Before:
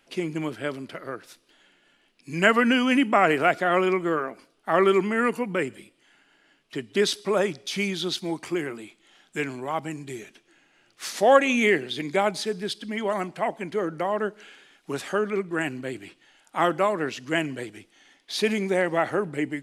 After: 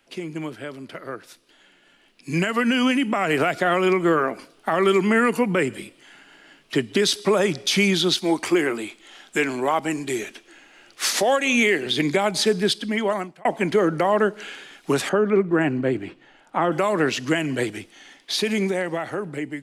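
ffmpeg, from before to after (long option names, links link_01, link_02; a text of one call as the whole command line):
ffmpeg -i in.wav -filter_complex "[0:a]asettb=1/sr,asplit=3[link_01][link_02][link_03];[link_01]atrim=end=8.174[link_04];[link_02]atrim=start=8.17:end=11.86,asetpts=PTS-STARTPTS,afade=type=in:duration=0.004:curve=qsin,afade=type=out:start_time=3.686:duration=0.004:curve=qsin,equalizer=frequency=140:width_type=o:width=0.99:gain=-9.5[link_05];[link_03]atrim=start=11.856[link_06];[link_04][link_05]acrossfade=duration=0.004:curve1=hsin:curve2=qsin[link_07];[link_07][link_06]acrossfade=duration=0.004:curve1=qsin:curve2=hsin,asettb=1/sr,asplit=3[link_08][link_09][link_10];[link_08]atrim=end=15.094[link_11];[link_09]atrim=start=15.09:end=16.72,asetpts=PTS-STARTPTS,afade=type=in:duration=0.004:curve=qsin,afade=type=out:start_time=1.626:duration=0.004:curve=qsin,lowpass=frequency=1000:poles=1[link_12];[link_10]atrim=start=16.716[link_13];[link_11][link_12]acrossfade=duration=0.004:curve1=hsin:curve2=qsin[link_14];[link_14][link_13]acrossfade=duration=0.004:curve1=qsin:curve2=hsin,asplit=2[link_15][link_16];[link_15]atrim=end=13.45,asetpts=PTS-STARTPTS,afade=type=out:start_time=12.55:duration=0.9[link_17];[link_16]atrim=start=13.45,asetpts=PTS-STARTPTS,afade=type=in:duration=0.004:curve=hsin[link_18];[link_17][link_18]concat=n=2:v=0:a=1,acrossover=split=160|3000[link_19][link_20][link_21];[link_20]acompressor=threshold=-23dB:ratio=6[link_22];[link_19][link_22][link_21]amix=inputs=3:normalize=0,alimiter=limit=-21.5dB:level=0:latency=1:release=251,dynaudnorm=framelen=650:gausssize=7:maxgain=11.5dB" out.wav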